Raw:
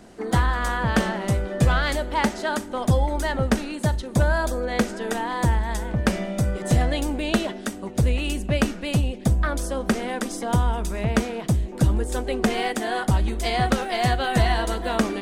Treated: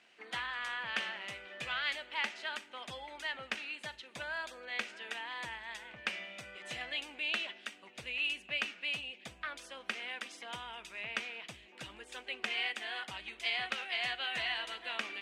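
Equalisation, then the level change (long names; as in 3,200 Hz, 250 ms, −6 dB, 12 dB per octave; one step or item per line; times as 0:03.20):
resonant band-pass 2,600 Hz, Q 3.1
0.0 dB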